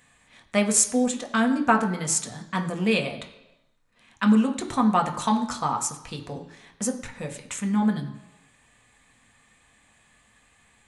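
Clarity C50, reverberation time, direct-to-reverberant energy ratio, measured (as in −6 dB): 11.0 dB, 1.0 s, 3.0 dB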